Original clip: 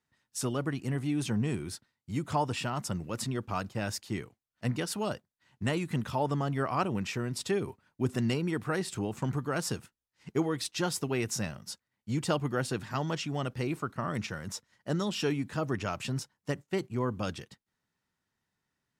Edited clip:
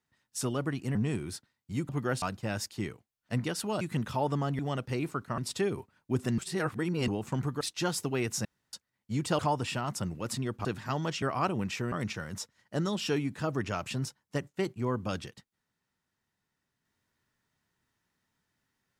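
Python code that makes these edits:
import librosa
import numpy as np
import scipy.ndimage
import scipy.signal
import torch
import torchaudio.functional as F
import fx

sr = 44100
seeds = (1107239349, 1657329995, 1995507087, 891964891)

y = fx.edit(x, sr, fx.cut(start_s=0.95, length_s=0.39),
    fx.swap(start_s=2.28, length_s=1.26, other_s=12.37, other_length_s=0.33),
    fx.cut(start_s=5.13, length_s=0.67),
    fx.swap(start_s=6.58, length_s=0.7, other_s=13.27, other_length_s=0.79),
    fx.reverse_span(start_s=8.28, length_s=0.7),
    fx.cut(start_s=9.51, length_s=1.08),
    fx.room_tone_fill(start_s=11.43, length_s=0.28), tone=tone)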